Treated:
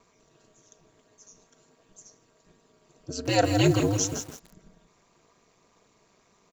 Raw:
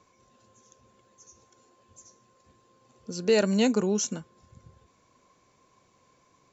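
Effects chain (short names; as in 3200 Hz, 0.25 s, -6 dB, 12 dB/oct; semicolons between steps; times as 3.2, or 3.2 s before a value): comb 3.4 ms, depth 74%; ring modulator 100 Hz; lo-fi delay 0.164 s, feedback 35%, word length 7-bit, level -7 dB; gain +3 dB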